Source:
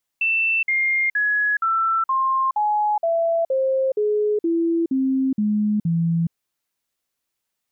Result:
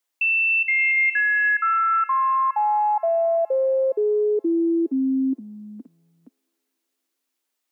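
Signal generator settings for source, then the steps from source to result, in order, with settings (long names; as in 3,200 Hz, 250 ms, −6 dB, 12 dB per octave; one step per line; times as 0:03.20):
stepped sweep 2,670 Hz down, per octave 3, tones 13, 0.42 s, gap 0.05 s −17 dBFS
Butterworth high-pass 250 Hz 72 dB per octave
on a send: delay with a high-pass on its return 288 ms, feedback 57%, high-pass 2,200 Hz, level −10 dB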